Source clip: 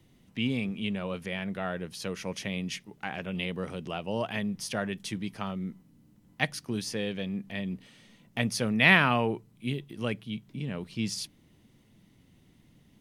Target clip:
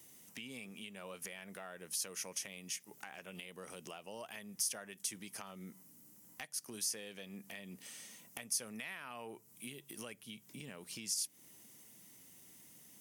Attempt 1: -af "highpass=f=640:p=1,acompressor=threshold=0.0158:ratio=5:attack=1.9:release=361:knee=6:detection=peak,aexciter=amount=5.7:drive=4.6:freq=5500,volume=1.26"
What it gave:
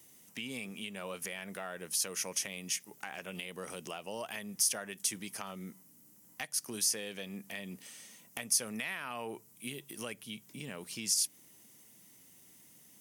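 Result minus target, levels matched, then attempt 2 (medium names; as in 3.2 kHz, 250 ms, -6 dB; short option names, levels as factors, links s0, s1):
compression: peak gain reduction -7 dB
-af "highpass=f=640:p=1,acompressor=threshold=0.00562:ratio=5:attack=1.9:release=361:knee=6:detection=peak,aexciter=amount=5.7:drive=4.6:freq=5500,volume=1.26"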